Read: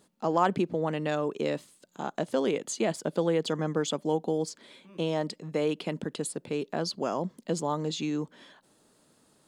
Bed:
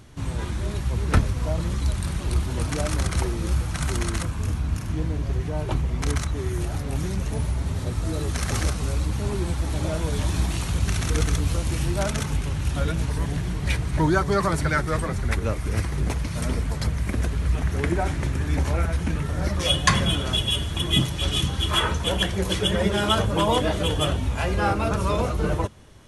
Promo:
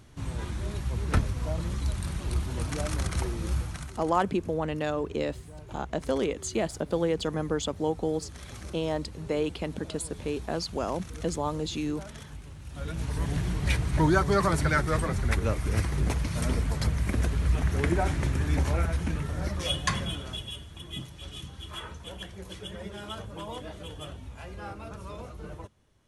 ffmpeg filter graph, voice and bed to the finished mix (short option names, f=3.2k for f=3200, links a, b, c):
-filter_complex "[0:a]adelay=3750,volume=-0.5dB[a];[1:a]volume=10.5dB,afade=t=out:st=3.6:d=0.31:silence=0.237137,afade=t=in:st=12.69:d=0.7:silence=0.158489,afade=t=out:st=18.41:d=2.24:silence=0.16788[b];[a][b]amix=inputs=2:normalize=0"